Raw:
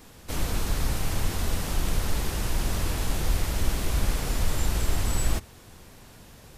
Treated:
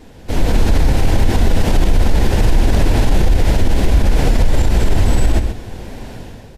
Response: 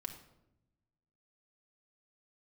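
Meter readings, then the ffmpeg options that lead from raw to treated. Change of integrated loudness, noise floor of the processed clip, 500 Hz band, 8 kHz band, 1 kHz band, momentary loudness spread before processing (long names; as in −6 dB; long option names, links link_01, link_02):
+12.5 dB, −37 dBFS, +14.5 dB, +2.5 dB, +11.5 dB, 21 LU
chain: -filter_complex "[0:a]equalizer=frequency=160:width_type=o:width=0.38:gain=-4,asplit=2[link_01][link_02];[1:a]atrim=start_sample=2205,lowpass=frequency=2600:width=0.5412,lowpass=frequency=2600:width=1.3066[link_03];[link_02][link_03]afir=irnorm=-1:irlink=0,volume=-13.5dB[link_04];[link_01][link_04]amix=inputs=2:normalize=0,dynaudnorm=framelen=120:gausssize=7:maxgain=10dB,lowpass=frequency=1900:poles=1,equalizer=frequency=1200:width_type=o:width=0.43:gain=-10.5,flanger=delay=2.6:depth=6.7:regen=-68:speed=1.5:shape=triangular,aecho=1:1:133:0.224,alimiter=level_in=17dB:limit=-1dB:release=50:level=0:latency=1,volume=-3dB"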